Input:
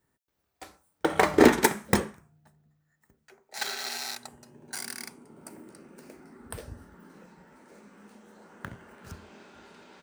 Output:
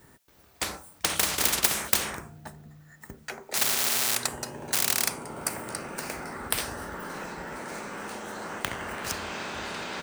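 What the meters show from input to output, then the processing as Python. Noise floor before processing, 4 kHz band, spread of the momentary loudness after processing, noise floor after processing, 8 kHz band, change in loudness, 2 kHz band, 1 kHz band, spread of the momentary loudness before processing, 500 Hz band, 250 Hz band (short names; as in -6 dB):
-77 dBFS, +7.5 dB, 14 LU, -57 dBFS, +10.5 dB, -2.0 dB, +1.5 dB, -1.5 dB, 24 LU, -8.0 dB, -9.5 dB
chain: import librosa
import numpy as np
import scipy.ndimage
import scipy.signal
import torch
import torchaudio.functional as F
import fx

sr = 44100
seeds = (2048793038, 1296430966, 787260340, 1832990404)

y = fx.spectral_comp(x, sr, ratio=10.0)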